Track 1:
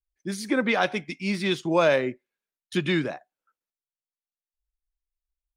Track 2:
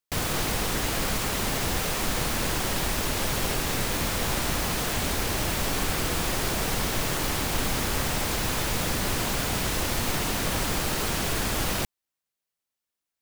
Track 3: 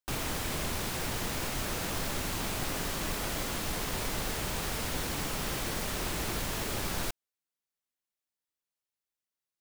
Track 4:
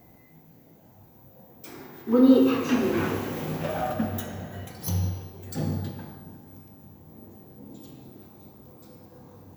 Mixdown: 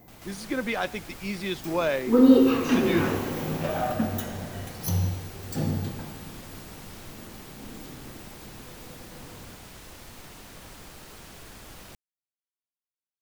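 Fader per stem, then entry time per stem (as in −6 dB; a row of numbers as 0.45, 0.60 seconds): −5.5, −18.5, −18.0, +1.0 decibels; 0.00, 0.10, 0.00, 0.00 seconds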